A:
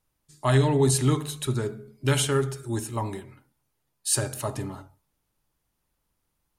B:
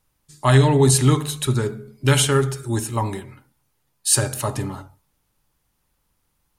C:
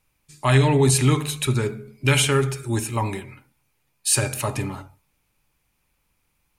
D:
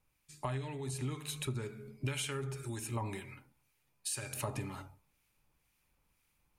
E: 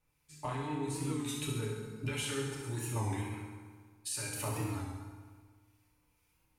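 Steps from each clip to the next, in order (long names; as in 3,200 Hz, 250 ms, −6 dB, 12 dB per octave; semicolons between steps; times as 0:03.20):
parametric band 350 Hz −2.5 dB 1 octave; notch filter 650 Hz, Q 16; level +7 dB
parametric band 2,400 Hz +11.5 dB 0.32 octaves; in parallel at −3 dB: brickwall limiter −11 dBFS, peak gain reduction 9.5 dB; on the sum: level −5.5 dB
downward compressor 16 to 1, threshold −28 dBFS, peak gain reduction 17 dB; two-band tremolo in antiphase 2 Hz, depth 50%, crossover 1,300 Hz; speech leveller 2 s; level −4 dB
delay with a high-pass on its return 68 ms, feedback 68%, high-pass 2,700 Hz, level −6.5 dB; feedback delay network reverb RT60 1.6 s, low-frequency decay 1.1×, high-frequency decay 0.5×, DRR −4 dB; wow of a warped record 33 1/3 rpm, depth 100 cents; level −3.5 dB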